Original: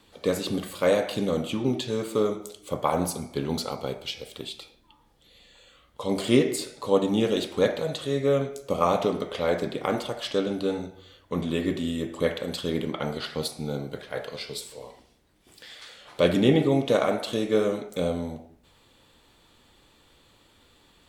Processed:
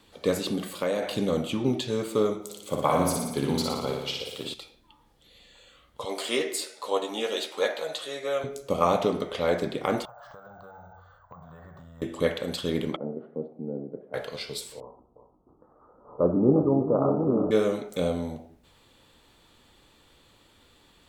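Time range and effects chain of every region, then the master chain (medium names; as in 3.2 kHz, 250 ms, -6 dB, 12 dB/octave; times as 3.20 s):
0.48–1.03 s: resonant low shelf 140 Hz -6.5 dB, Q 1.5 + compression 5:1, threshold -23 dBFS
2.44–4.54 s: high-pass 85 Hz + flutter echo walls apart 10 m, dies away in 0.96 s
6.05–8.44 s: high-pass 590 Hz + doubling 13 ms -6.5 dB
10.05–12.02 s: FFT filter 150 Hz 0 dB, 310 Hz -28 dB, 710 Hz +8 dB, 1.5 kHz +6 dB, 2.4 kHz -25 dB, 3.6 kHz -21 dB, 6.4 kHz -14 dB, 9.2 kHz -24 dB + compression 12:1, threshold -43 dBFS + careless resampling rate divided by 2×, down filtered, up hold
12.96–14.14 s: Butterworth band-pass 320 Hz, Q 0.88 + distance through air 330 m
14.80–17.51 s: chunks repeated in reverse 698 ms, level -5 dB + rippled Chebyshev low-pass 1.3 kHz, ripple 3 dB + delay 354 ms -10.5 dB
whole clip: none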